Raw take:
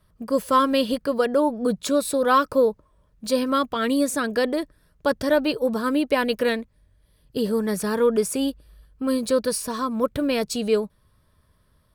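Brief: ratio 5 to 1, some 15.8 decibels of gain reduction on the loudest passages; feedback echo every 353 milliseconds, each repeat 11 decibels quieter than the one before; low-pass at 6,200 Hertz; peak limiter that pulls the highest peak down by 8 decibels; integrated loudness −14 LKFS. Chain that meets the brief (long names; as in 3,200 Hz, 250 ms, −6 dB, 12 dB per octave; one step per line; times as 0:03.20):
low-pass filter 6,200 Hz
downward compressor 5 to 1, threshold −33 dBFS
brickwall limiter −28.5 dBFS
repeating echo 353 ms, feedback 28%, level −11 dB
level +24 dB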